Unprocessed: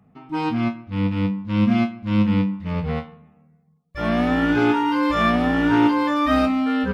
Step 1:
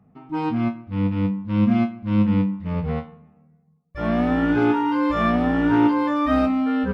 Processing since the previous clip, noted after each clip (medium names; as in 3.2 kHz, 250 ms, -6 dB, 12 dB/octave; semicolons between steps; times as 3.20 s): treble shelf 2.1 kHz -10 dB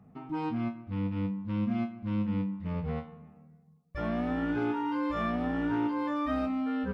compression 2:1, threshold -37 dBFS, peak gain reduction 13 dB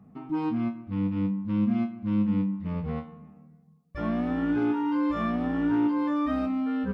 small resonant body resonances 210/300/1100 Hz, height 6 dB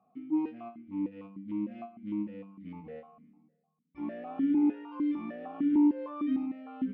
stepped vowel filter 6.6 Hz; trim +2 dB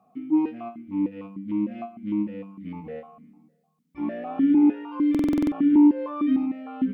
buffer glitch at 5.10 s, samples 2048, times 8; trim +8 dB